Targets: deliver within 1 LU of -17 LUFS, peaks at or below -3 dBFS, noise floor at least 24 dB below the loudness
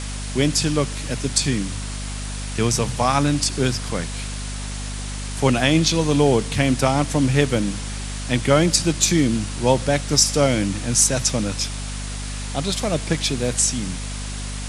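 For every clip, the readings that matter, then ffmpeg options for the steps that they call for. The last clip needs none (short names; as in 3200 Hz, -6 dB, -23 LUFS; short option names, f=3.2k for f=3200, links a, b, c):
hum 50 Hz; harmonics up to 250 Hz; hum level -27 dBFS; noise floor -29 dBFS; noise floor target -45 dBFS; loudness -21.0 LUFS; peak -2.0 dBFS; loudness target -17.0 LUFS
-> -af "bandreject=f=50:t=h:w=4,bandreject=f=100:t=h:w=4,bandreject=f=150:t=h:w=4,bandreject=f=200:t=h:w=4,bandreject=f=250:t=h:w=4"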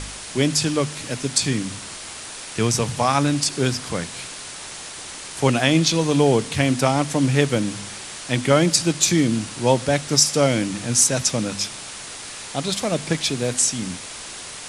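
hum none; noise floor -36 dBFS; noise floor target -45 dBFS
-> -af "afftdn=nr=9:nf=-36"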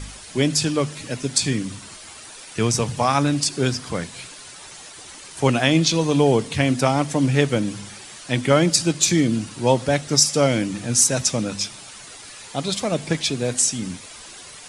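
noise floor -41 dBFS; noise floor target -45 dBFS
-> -af "afftdn=nr=6:nf=-41"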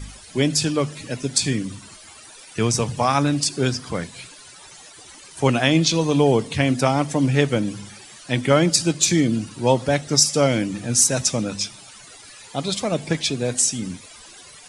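noise floor -44 dBFS; noise floor target -45 dBFS
-> -af "afftdn=nr=6:nf=-44"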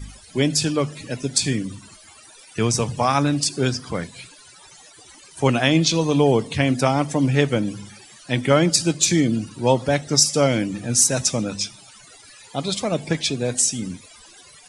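noise floor -47 dBFS; loudness -20.5 LUFS; peak -2.5 dBFS; loudness target -17.0 LUFS
-> -af "volume=3.5dB,alimiter=limit=-3dB:level=0:latency=1"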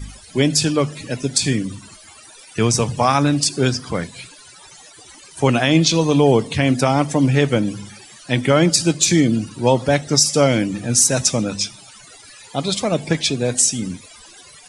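loudness -17.5 LUFS; peak -3.0 dBFS; noise floor -44 dBFS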